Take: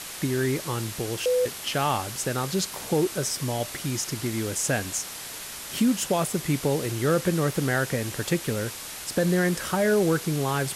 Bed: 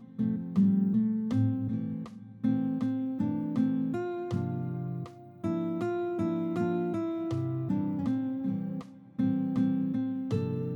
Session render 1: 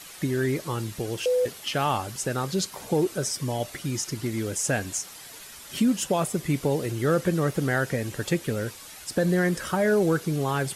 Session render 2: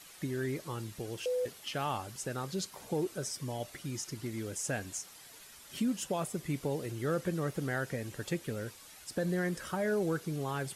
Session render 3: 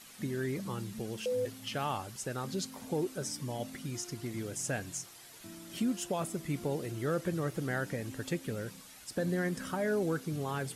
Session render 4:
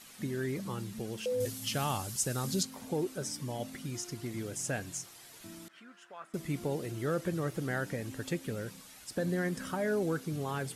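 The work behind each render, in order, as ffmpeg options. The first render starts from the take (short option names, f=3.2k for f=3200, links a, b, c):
-af "afftdn=nr=9:nf=-38"
-af "volume=-9.5dB"
-filter_complex "[1:a]volume=-19dB[a];[0:a][a]amix=inputs=2:normalize=0"
-filter_complex "[0:a]asettb=1/sr,asplit=3[a][b][c];[a]atrim=end=1.404[d];[b]atrim=start=1.4:end=2.63,asetpts=PTS-STARTPTS,afade=t=in:d=0.004:c=qsin,afade=t=out:st=1.226:d=0.004:c=qsin,bass=f=250:g=6,treble=f=4k:g=11[e];[c]atrim=start=2.626[f];[d][e]acrossfade=d=0.004:c1=hsin:c2=qsin[g];[g][f]acrossfade=d=0.004:c1=qsin:c2=hsin,asettb=1/sr,asplit=3[h][i][j];[h]atrim=end=5.684[k];[i]atrim=start=5.68:end=6.34,asetpts=PTS-STARTPTS,afade=t=in:d=0.004:c=qsin,afade=t=out:st=0.656:d=0.004:c=qsin,bandpass=f=1.5k:t=q:w=3[l];[j]atrim=start=6.336[m];[k][l]acrossfade=d=0.004:c1=hsin:c2=qsin[n];[n][m]acrossfade=d=0.004:c1=qsin:c2=hsin"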